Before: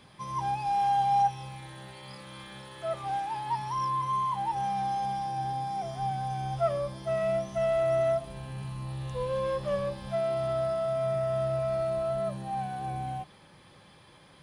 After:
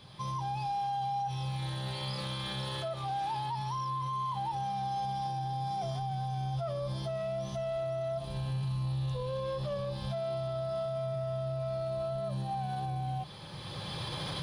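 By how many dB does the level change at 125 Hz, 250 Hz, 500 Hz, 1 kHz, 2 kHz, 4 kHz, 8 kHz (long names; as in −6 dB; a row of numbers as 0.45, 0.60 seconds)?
+3.0, −0.5, −6.5, −5.5, −4.0, +5.5, −2.0 decibels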